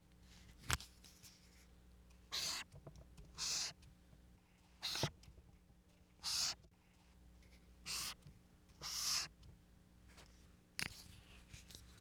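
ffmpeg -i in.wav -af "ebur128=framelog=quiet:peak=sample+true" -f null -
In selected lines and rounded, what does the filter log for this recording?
Integrated loudness:
  I:         -42.8 LUFS
  Threshold: -56.5 LUFS
Loudness range:
  LRA:         1.5 LU
  Threshold: -65.9 LUFS
  LRA low:   -46.4 LUFS
  LRA high:  -44.9 LUFS
Sample peak:
  Peak:      -14.3 dBFS
True peak:
  Peak:      -14.1 dBFS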